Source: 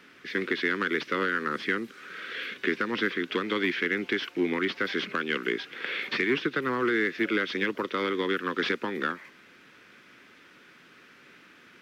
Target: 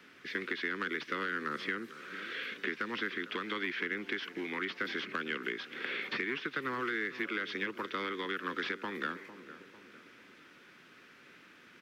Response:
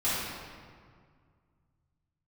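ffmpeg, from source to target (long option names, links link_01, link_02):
-filter_complex "[0:a]asplit=2[link_01][link_02];[link_02]adelay=451,lowpass=frequency=1600:poles=1,volume=-17dB,asplit=2[link_03][link_04];[link_04]adelay=451,lowpass=frequency=1600:poles=1,volume=0.49,asplit=2[link_05][link_06];[link_06]adelay=451,lowpass=frequency=1600:poles=1,volume=0.49,asplit=2[link_07][link_08];[link_08]adelay=451,lowpass=frequency=1600:poles=1,volume=0.49[link_09];[link_01][link_03][link_05][link_07][link_09]amix=inputs=5:normalize=0,acrossover=split=390|810|2100[link_10][link_11][link_12][link_13];[link_10]acompressor=threshold=-38dB:ratio=4[link_14];[link_11]acompressor=threshold=-45dB:ratio=4[link_15];[link_12]acompressor=threshold=-31dB:ratio=4[link_16];[link_13]acompressor=threshold=-38dB:ratio=4[link_17];[link_14][link_15][link_16][link_17]amix=inputs=4:normalize=0,volume=-3.5dB"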